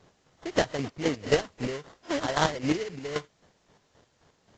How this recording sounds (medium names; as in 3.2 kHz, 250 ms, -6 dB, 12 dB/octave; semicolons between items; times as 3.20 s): aliases and images of a low sample rate 2.5 kHz, jitter 20%; chopped level 3.8 Hz, depth 65%, duty 35%; a quantiser's noise floor 12-bit, dither triangular; AAC